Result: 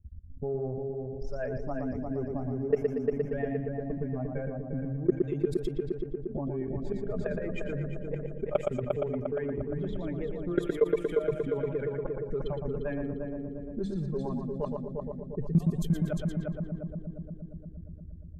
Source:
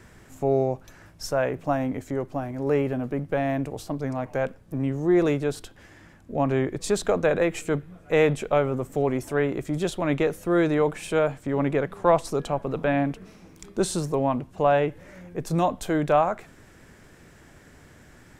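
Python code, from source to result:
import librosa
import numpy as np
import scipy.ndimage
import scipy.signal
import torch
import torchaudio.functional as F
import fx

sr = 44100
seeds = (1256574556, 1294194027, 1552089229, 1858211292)

p1 = fx.bin_expand(x, sr, power=2.0)
p2 = fx.gate_flip(p1, sr, shuts_db=-16.0, range_db=-32)
p3 = fx.low_shelf(p2, sr, hz=120.0, db=9.0)
p4 = fx.hum_notches(p3, sr, base_hz=50, count=4)
p5 = fx.level_steps(p4, sr, step_db=22)
p6 = fx.rotary(p5, sr, hz=7.5)
p7 = fx.transient(p6, sr, attack_db=5, sustain_db=-8)
p8 = p7 + 0.41 * np.pad(p7, (int(4.9 * sr / 1000.0), 0))[:len(p7)]
p9 = p8 + fx.echo_heads(p8, sr, ms=117, heads='first and third', feedback_pct=59, wet_db=-7.0, dry=0)
p10 = fx.env_lowpass(p9, sr, base_hz=370.0, full_db=-31.0)
p11 = fx.env_flatten(p10, sr, amount_pct=50)
y = p11 * 10.0 ** (-1.5 / 20.0)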